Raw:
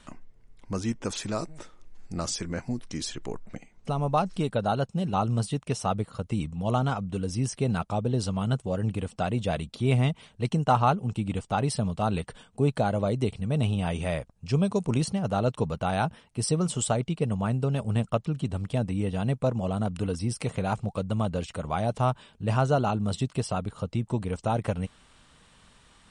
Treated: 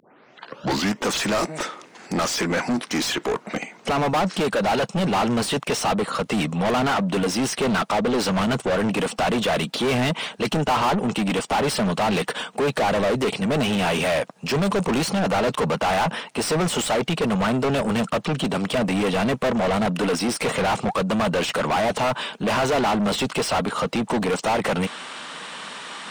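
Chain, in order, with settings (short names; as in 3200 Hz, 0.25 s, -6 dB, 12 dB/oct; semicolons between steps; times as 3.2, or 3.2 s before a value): tape start at the beginning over 1.00 s; HPF 160 Hz 24 dB/oct; overdrive pedal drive 38 dB, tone 3200 Hz, clips at -9 dBFS; upward compressor, threshold -40 dBFS; gain -4.5 dB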